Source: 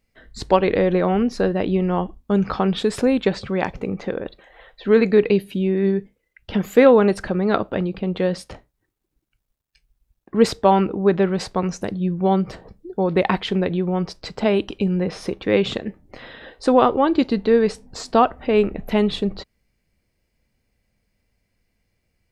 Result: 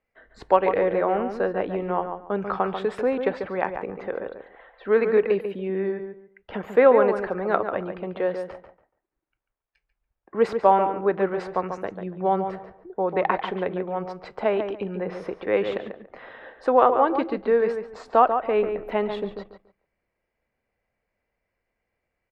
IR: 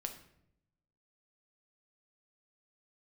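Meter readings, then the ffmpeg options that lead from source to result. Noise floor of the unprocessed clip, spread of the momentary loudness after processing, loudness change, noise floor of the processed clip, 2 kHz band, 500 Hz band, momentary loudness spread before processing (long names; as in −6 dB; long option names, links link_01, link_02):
−74 dBFS, 15 LU, −4.0 dB, −81 dBFS, −3.0 dB, −3.0 dB, 11 LU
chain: -filter_complex "[0:a]acrossover=split=420 2200:gain=0.178 1 0.0891[link_01][link_02][link_03];[link_01][link_02][link_03]amix=inputs=3:normalize=0,asplit=2[link_04][link_05];[link_05]adelay=142,lowpass=frequency=2300:poles=1,volume=-7dB,asplit=2[link_06][link_07];[link_07]adelay=142,lowpass=frequency=2300:poles=1,volume=0.23,asplit=2[link_08][link_09];[link_09]adelay=142,lowpass=frequency=2300:poles=1,volume=0.23[link_10];[link_06][link_08][link_10]amix=inputs=3:normalize=0[link_11];[link_04][link_11]amix=inputs=2:normalize=0"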